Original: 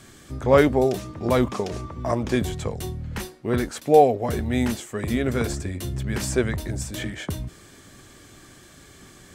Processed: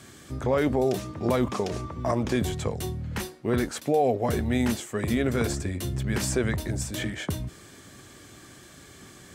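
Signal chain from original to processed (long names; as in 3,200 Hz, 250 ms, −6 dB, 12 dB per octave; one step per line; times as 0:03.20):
high-pass filter 60 Hz
brickwall limiter −14 dBFS, peak gain reduction 10.5 dB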